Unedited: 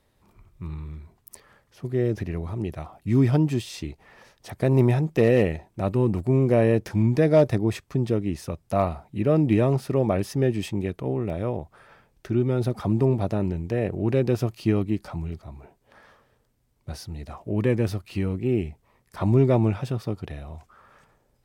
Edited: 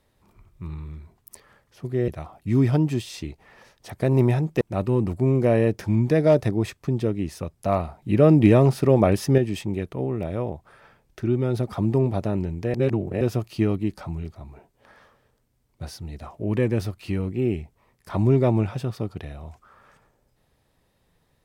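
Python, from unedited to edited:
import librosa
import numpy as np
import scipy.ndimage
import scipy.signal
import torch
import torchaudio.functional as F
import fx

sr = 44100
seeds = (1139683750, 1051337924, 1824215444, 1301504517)

y = fx.edit(x, sr, fx.cut(start_s=2.08, length_s=0.6),
    fx.cut(start_s=5.21, length_s=0.47),
    fx.clip_gain(start_s=9.09, length_s=1.36, db=5.0),
    fx.reverse_span(start_s=13.81, length_s=0.47), tone=tone)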